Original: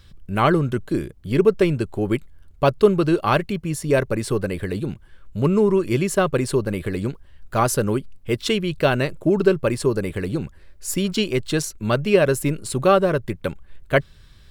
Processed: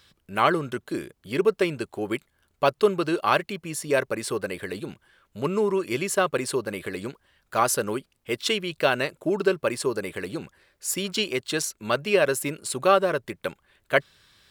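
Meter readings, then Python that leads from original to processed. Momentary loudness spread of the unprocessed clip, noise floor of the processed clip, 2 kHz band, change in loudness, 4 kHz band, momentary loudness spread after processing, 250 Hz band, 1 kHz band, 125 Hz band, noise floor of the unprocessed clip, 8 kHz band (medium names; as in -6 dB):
10 LU, -71 dBFS, -0.5 dB, -4.5 dB, 0.0 dB, 12 LU, -8.0 dB, -1.5 dB, -13.0 dB, -48 dBFS, 0.0 dB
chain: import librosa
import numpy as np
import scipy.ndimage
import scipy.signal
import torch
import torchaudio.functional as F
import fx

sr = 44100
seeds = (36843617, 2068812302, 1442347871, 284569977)

y = fx.highpass(x, sr, hz=630.0, slope=6)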